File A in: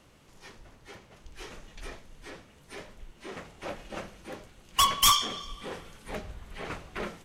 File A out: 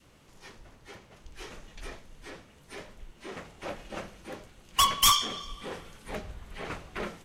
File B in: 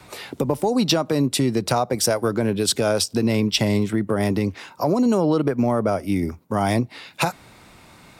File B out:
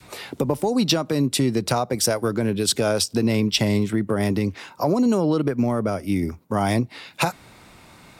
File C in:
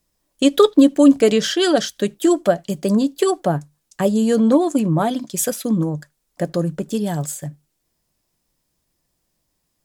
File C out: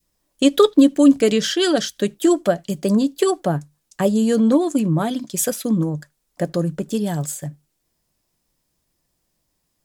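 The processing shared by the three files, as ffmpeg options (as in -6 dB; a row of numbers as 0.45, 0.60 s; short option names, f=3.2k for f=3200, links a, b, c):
-af "adynamicequalizer=threshold=0.0282:dfrequency=760:dqfactor=0.93:tfrequency=760:tqfactor=0.93:attack=5:release=100:ratio=0.375:range=3:mode=cutabove:tftype=bell"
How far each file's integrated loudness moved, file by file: 0.0, -0.5, -1.0 LU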